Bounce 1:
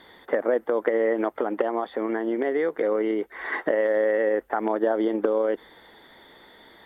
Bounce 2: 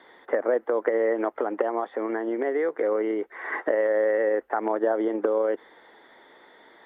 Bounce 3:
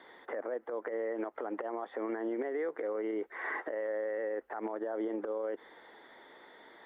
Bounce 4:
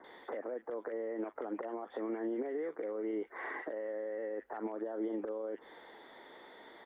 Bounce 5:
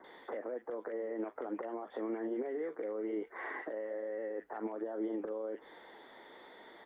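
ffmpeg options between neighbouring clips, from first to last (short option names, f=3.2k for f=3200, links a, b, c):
-filter_complex "[0:a]acrossover=split=3100[a][b];[b]acompressor=threshold=-55dB:ratio=4:attack=1:release=60[c];[a][c]amix=inputs=2:normalize=0,acrossover=split=250 2900:gain=0.158 1 0.178[d][e][f];[d][e][f]amix=inputs=3:normalize=0"
-af "acompressor=threshold=-26dB:ratio=6,alimiter=level_in=1dB:limit=-24dB:level=0:latency=1:release=73,volume=-1dB,volume=-2.5dB"
-filter_complex "[0:a]acrossover=split=1600[a][b];[b]adelay=40[c];[a][c]amix=inputs=2:normalize=0,acrossover=split=310[d][e];[e]acompressor=threshold=-41dB:ratio=6[f];[d][f]amix=inputs=2:normalize=0,volume=2dB"
-af "flanger=delay=5.2:depth=4:regen=-74:speed=1.2:shape=sinusoidal,volume=4dB"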